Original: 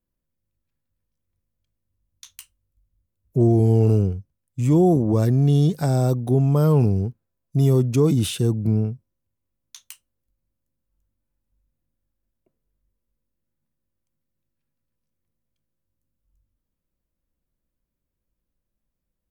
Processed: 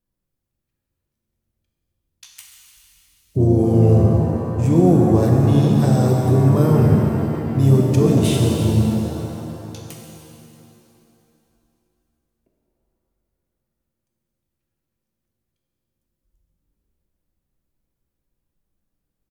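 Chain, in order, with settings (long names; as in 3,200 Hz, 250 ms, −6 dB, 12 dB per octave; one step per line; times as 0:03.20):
echo with shifted repeats 150 ms, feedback 59%, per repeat +120 Hz, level −18 dB
pitch-shifted copies added −5 semitones −7 dB
reverb with rising layers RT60 2.8 s, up +7 semitones, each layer −8 dB, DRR −0.5 dB
level −1 dB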